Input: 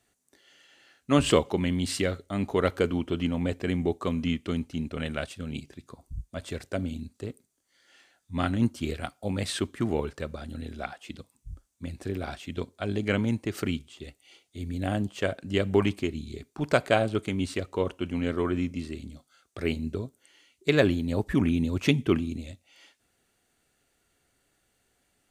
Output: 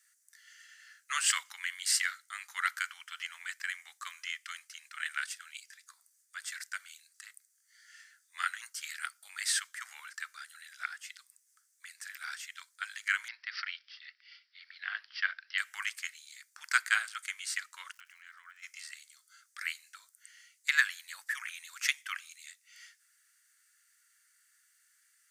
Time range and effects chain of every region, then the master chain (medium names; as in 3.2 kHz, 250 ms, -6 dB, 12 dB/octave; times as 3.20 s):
13.28–15.58 s: low-pass 9.6 kHz 24 dB/octave + careless resampling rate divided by 4×, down none, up filtered
17.91–18.62 s: treble shelf 9.7 kHz -11.5 dB + crackle 210 per s -48 dBFS + compression 5:1, threshold -39 dBFS
whole clip: steep high-pass 1.5 kHz 36 dB/octave; high-order bell 3.1 kHz -9.5 dB 1 oct; trim +6.5 dB